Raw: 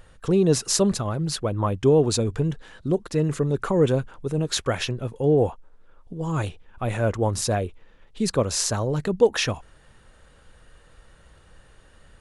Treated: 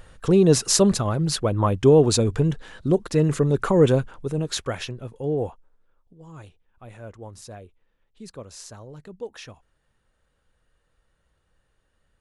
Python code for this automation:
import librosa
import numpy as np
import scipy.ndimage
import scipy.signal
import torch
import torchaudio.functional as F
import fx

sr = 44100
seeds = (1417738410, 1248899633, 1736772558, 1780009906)

y = fx.gain(x, sr, db=fx.line((3.91, 3.0), (4.95, -6.0), (5.46, -6.0), (6.16, -17.0)))